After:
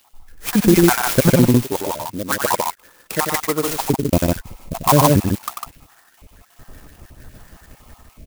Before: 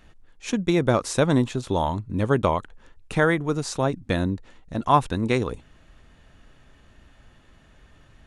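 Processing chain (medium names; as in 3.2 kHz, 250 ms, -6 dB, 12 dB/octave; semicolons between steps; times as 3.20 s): random holes in the spectrogram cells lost 66%; 1.49–3.71 s: high-pass 1.1 kHz 6 dB/octave; loudspeakers at several distances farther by 32 m -5 dB, 52 m -4 dB; loudness maximiser +13.5 dB; sampling jitter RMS 0.083 ms; trim -1 dB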